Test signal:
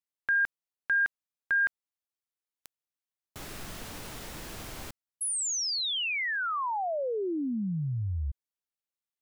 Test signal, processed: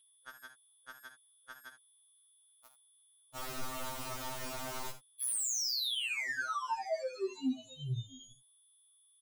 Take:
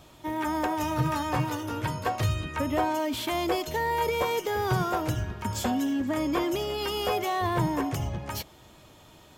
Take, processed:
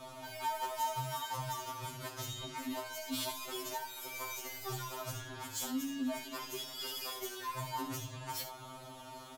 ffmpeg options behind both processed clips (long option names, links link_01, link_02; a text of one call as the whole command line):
ffmpeg -i in.wav -filter_complex "[0:a]superequalizer=8b=1.78:9b=2:10b=2.24,acrossover=split=4500[link_01][link_02];[link_01]acompressor=threshold=-35dB:ratio=6:attack=0.75:release=102[link_03];[link_03][link_02]amix=inputs=2:normalize=0,aeval=exprs='val(0)+0.00891*sin(2*PI*3400*n/s)':channel_layout=same,asoftclip=type=tanh:threshold=-35dB,aecho=1:1:11|54|76:0.562|0.266|0.251,afftfilt=real='re*2.45*eq(mod(b,6),0)':imag='im*2.45*eq(mod(b,6),0)':win_size=2048:overlap=0.75,volume=3dB" out.wav